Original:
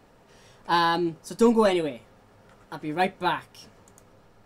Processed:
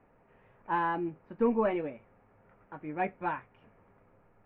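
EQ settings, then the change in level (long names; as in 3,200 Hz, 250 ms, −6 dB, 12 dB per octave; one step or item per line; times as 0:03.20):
elliptic low-pass filter 2,400 Hz, stop band 80 dB
high-frequency loss of the air 52 metres
−7.0 dB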